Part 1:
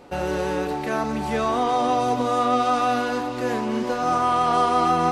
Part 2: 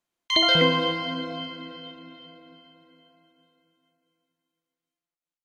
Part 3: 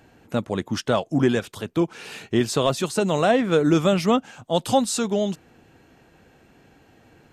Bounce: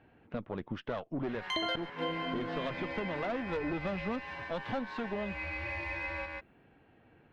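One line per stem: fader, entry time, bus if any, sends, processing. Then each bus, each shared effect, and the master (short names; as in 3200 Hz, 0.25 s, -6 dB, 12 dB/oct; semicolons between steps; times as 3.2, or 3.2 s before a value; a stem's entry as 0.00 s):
-15.5 dB, 1.15 s, no send, echo send -3.5 dB, bell 2500 Hz -3 dB; ring modulator 1300 Hz; resonant high shelf 5600 Hz -12 dB, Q 1.5
+1.0 dB, 1.20 s, no send, echo send -20.5 dB, bell 4900 Hz -12 dB 1.6 oct; flipped gate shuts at -12 dBFS, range -32 dB
-4.5 dB, 0.00 s, no send, no echo send, inverse Chebyshev low-pass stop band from 9000 Hz, stop band 60 dB; tube stage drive 17 dB, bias 0.7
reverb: off
echo: echo 0.141 s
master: compressor 3:1, threshold -34 dBFS, peak gain reduction 11 dB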